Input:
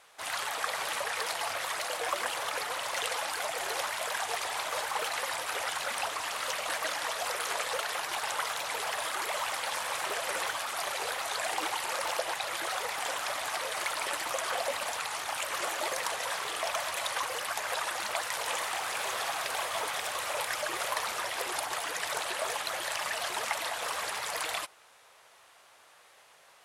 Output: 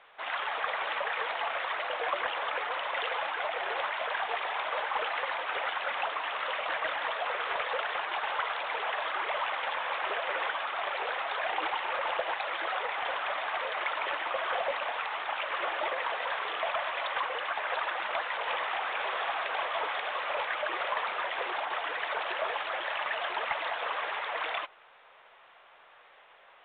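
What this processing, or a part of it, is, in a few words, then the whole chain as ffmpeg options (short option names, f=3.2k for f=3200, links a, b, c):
telephone: -af "highpass=390,lowpass=3.2k,asoftclip=type=tanh:threshold=-22.5dB,volume=3dB" -ar 8000 -c:a pcm_alaw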